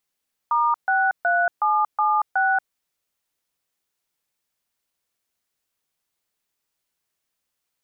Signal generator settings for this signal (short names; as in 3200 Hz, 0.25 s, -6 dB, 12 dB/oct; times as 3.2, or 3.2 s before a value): DTMF "*63776", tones 0.232 s, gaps 0.137 s, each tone -19.5 dBFS